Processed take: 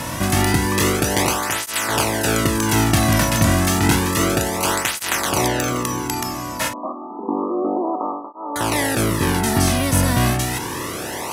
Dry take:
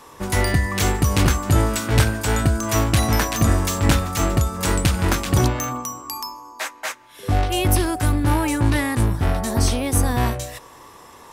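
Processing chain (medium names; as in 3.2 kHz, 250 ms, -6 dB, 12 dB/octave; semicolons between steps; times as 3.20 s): spectral levelling over time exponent 0.4; 6.73–8.56 s: brick-wall FIR band-pass 200–1300 Hz; cancelling through-zero flanger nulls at 0.3 Hz, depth 2.6 ms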